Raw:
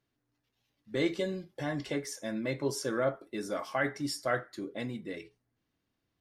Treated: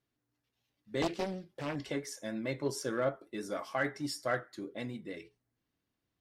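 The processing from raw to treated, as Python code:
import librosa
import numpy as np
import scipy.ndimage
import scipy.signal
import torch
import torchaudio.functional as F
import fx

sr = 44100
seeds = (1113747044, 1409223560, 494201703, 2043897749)

y = fx.vibrato(x, sr, rate_hz=6.5, depth_cents=32.0)
y = fx.cheby_harmonics(y, sr, harmonics=(7,), levels_db=(-34,), full_scale_db=-17.5)
y = fx.doppler_dist(y, sr, depth_ms=0.75, at=(1.02, 1.76))
y = F.gain(torch.from_numpy(y), -2.0).numpy()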